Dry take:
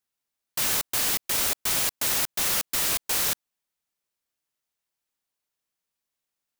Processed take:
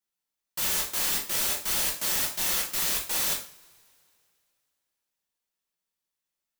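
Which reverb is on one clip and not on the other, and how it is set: two-slope reverb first 0.4 s, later 2.6 s, from -28 dB, DRR -2.5 dB; trim -7 dB

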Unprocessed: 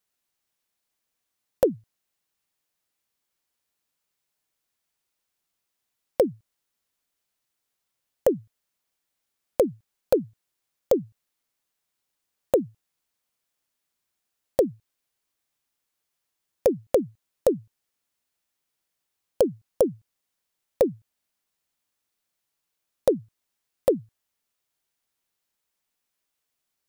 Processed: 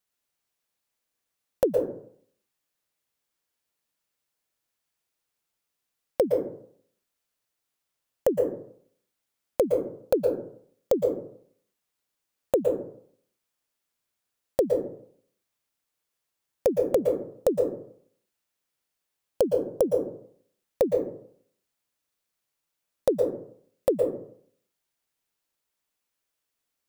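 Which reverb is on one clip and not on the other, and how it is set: plate-style reverb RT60 0.6 s, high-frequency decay 0.4×, pre-delay 105 ms, DRR 3.5 dB; trim -2.5 dB

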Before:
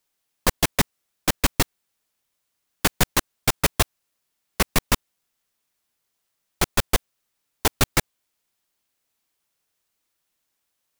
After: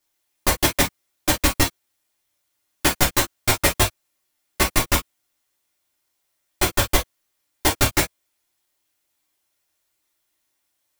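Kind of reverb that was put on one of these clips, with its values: gated-style reverb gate 80 ms falling, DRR -4 dB; trim -2.5 dB

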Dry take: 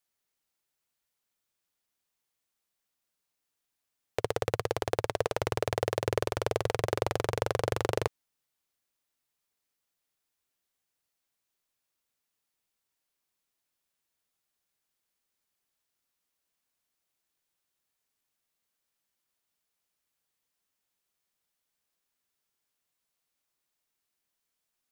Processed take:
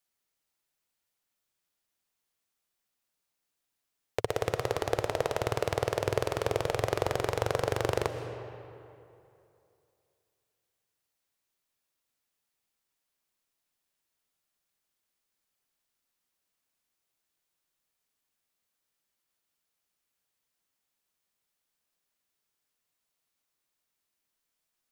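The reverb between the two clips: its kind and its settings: algorithmic reverb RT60 2.7 s, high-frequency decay 0.65×, pre-delay 85 ms, DRR 8 dB

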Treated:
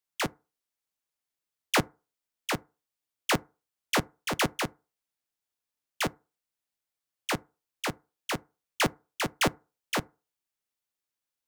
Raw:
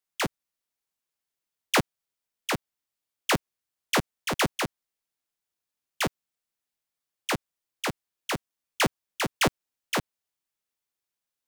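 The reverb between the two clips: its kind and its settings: FDN reverb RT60 0.32 s, low-frequency decay 0.85×, high-frequency decay 0.45×, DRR 19 dB; trim -2 dB

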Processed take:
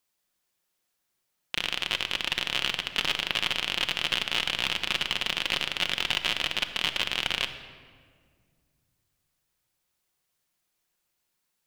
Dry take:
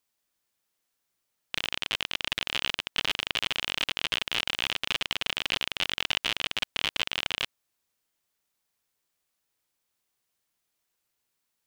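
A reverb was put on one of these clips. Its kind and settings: simulated room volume 2900 m³, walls mixed, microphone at 0.95 m; trim +1 dB

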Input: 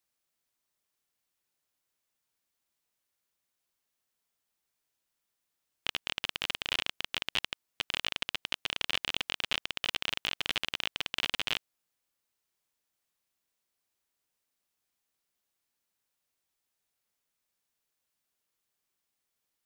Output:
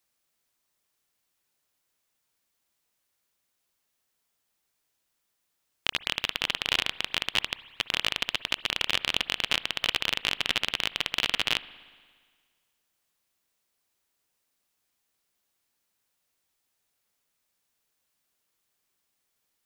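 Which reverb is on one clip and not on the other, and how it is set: spring tank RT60 1.7 s, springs 58 ms, chirp 25 ms, DRR 17 dB; trim +5.5 dB

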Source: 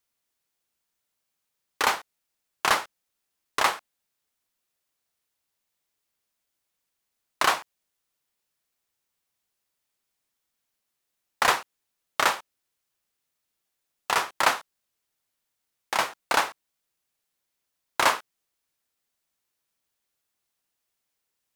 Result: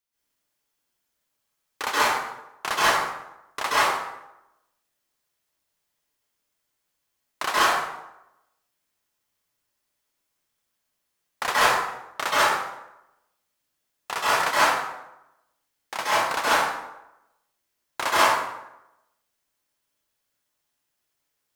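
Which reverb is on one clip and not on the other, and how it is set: plate-style reverb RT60 0.9 s, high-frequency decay 0.65×, pre-delay 120 ms, DRR -10 dB; trim -6.5 dB

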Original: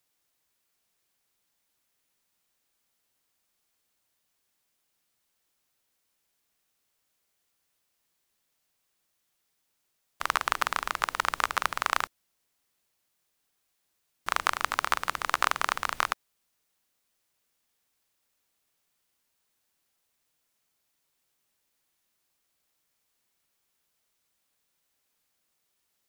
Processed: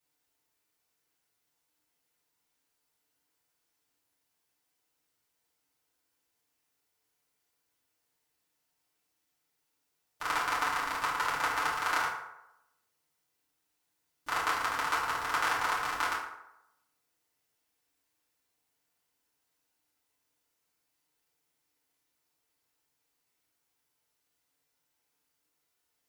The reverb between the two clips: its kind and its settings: FDN reverb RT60 0.87 s, low-frequency decay 0.75×, high-frequency decay 0.55×, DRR -9 dB; trim -11 dB

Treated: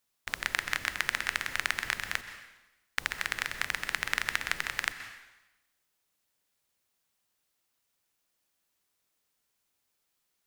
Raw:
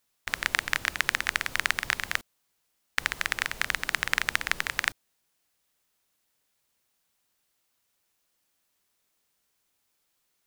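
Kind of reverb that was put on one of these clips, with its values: plate-style reverb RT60 1 s, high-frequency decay 0.95×, pre-delay 115 ms, DRR 10 dB; trim -4 dB

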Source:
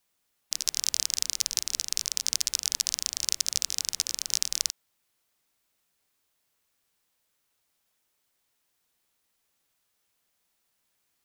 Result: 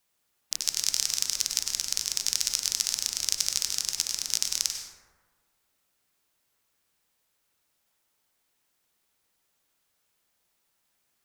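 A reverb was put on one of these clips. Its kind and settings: plate-style reverb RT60 1.5 s, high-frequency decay 0.35×, pre-delay 85 ms, DRR 3.5 dB

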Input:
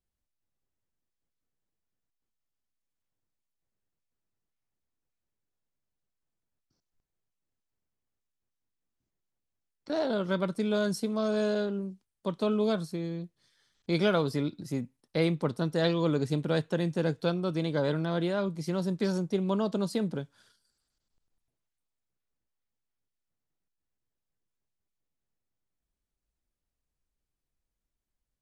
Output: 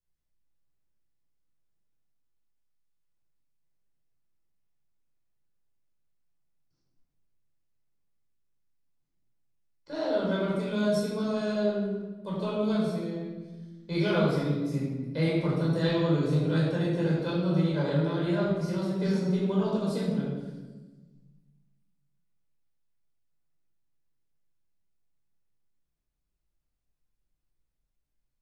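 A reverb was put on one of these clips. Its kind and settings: simulated room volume 860 m³, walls mixed, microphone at 5 m; trim -10 dB

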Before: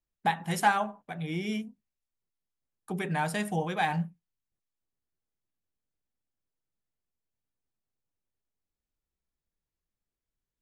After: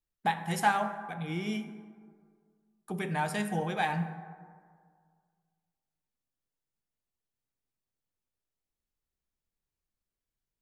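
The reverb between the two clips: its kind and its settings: plate-style reverb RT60 1.9 s, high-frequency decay 0.4×, DRR 8.5 dB; trim -2 dB

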